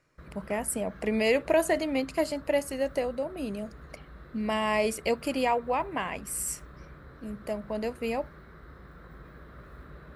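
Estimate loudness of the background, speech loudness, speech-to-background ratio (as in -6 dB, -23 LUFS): -49.5 LUFS, -29.5 LUFS, 20.0 dB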